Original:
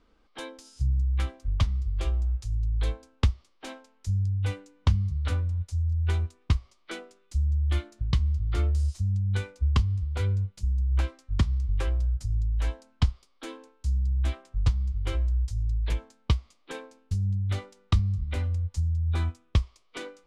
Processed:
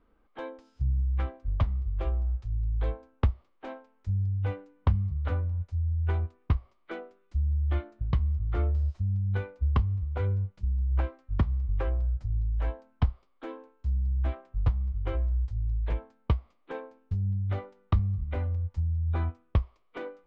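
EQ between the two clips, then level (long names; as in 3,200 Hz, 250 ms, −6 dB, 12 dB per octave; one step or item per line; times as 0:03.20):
low-pass filter 1,900 Hz 12 dB per octave
dynamic equaliser 650 Hz, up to +6 dB, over −50 dBFS, Q 0.93
−2.0 dB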